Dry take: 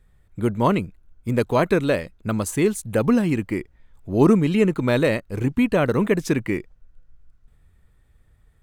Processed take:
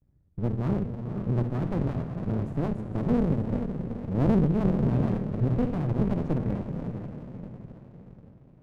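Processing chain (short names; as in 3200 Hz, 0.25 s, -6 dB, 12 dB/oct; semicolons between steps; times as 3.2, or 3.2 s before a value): gate with hold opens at -51 dBFS; band-pass 150 Hz, Q 1.2; diffused feedback echo 0.502 s, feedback 47%, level -7 dB; reverb RT60 0.25 s, pre-delay 49 ms, DRR 8 dB; running maximum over 65 samples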